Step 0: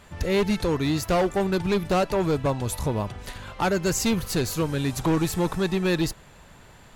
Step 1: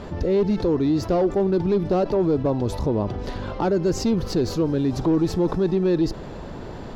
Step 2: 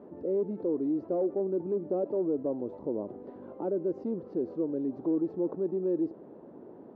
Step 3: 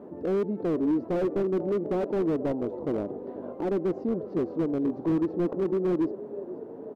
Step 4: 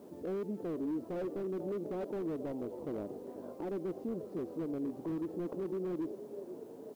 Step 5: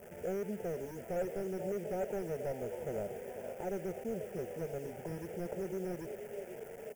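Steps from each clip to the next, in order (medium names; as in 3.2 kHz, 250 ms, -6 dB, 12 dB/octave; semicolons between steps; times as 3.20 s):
FFT filter 140 Hz 0 dB, 340 Hz +8 dB, 2.3 kHz -11 dB, 5.2 kHz -6 dB, 8.6 kHz -23 dB; level flattener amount 50%; trim -3.5 dB
dynamic bell 560 Hz, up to +5 dB, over -35 dBFS, Q 3.2; ladder band-pass 380 Hz, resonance 30%
frequency-shifting echo 484 ms, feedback 54%, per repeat +37 Hz, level -14.5 dB; slew-rate limiter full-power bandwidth 15 Hz; trim +5 dB
peak limiter -21.5 dBFS, peak gain reduction 5 dB; added noise white -64 dBFS; trim -8 dB
in parallel at -4 dB: word length cut 8-bit, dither none; on the sum: static phaser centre 1.1 kHz, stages 6; trim +1.5 dB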